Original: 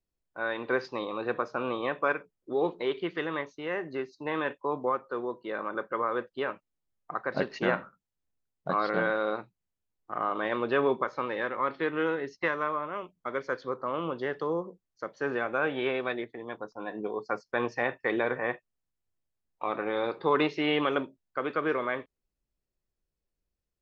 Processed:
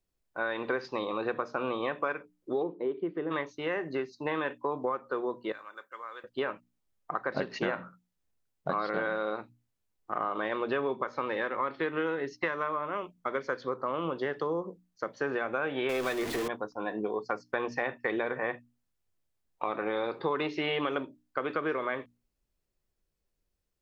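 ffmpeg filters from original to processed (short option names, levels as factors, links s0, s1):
-filter_complex "[0:a]asplit=3[s0][s1][s2];[s0]afade=t=out:st=2.62:d=0.02[s3];[s1]bandpass=f=280:t=q:w=0.96,afade=t=in:st=2.62:d=0.02,afade=t=out:st=3.3:d=0.02[s4];[s2]afade=t=in:st=3.3:d=0.02[s5];[s3][s4][s5]amix=inputs=3:normalize=0,asettb=1/sr,asplit=3[s6][s7][s8];[s6]atrim=end=5.524[s9];[s7]atrim=start=5.52:end=6.24,asetpts=PTS-STARTPTS,afade=t=in:d=0.004:c=qsin,afade=t=out:st=0.716:d=0.004:c=qsin,aderivative[s10];[s8]atrim=start=6.236[s11];[s9][s10]acrossfade=d=0.004:c1=hsin:c2=qsin[s12];[s12][s11]acrossfade=d=0.004:c1=qsin:c2=hsin,asettb=1/sr,asplit=3[s13][s14][s15];[s13]atrim=end=15.894[s16];[s14]atrim=start=15.89:end=16.48,asetpts=PTS-STARTPTS,afade=t=in:d=0.004:c=qsin,afade=t=out:st=0.586:d=0.004:c=qsin,aeval=exprs='val(0)+0.5*0.0266*sgn(val(0))':c=same[s17];[s15]atrim=start=16.476[s18];[s16][s17]acrossfade=d=0.004:c1=hsin:c2=qsin[s19];[s19][s18]acrossfade=d=0.004:c1=qsin:c2=hsin,bandreject=f=60:t=h:w=6,bandreject=f=120:t=h:w=6,bandreject=f=180:t=h:w=6,bandreject=f=240:t=h:w=6,bandreject=f=300:t=h:w=6,acompressor=threshold=0.0251:ratio=4,volume=1.58"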